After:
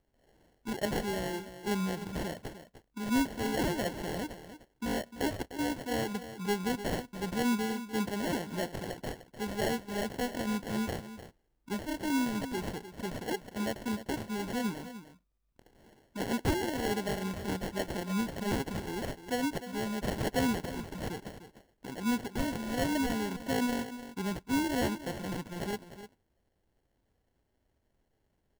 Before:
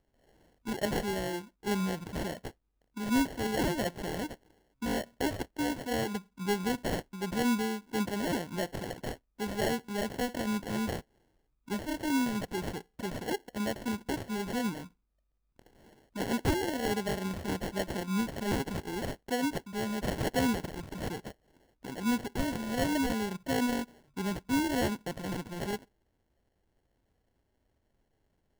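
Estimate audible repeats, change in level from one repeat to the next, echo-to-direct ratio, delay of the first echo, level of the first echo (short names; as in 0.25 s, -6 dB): 1, no steady repeat, -12.5 dB, 0.301 s, -12.5 dB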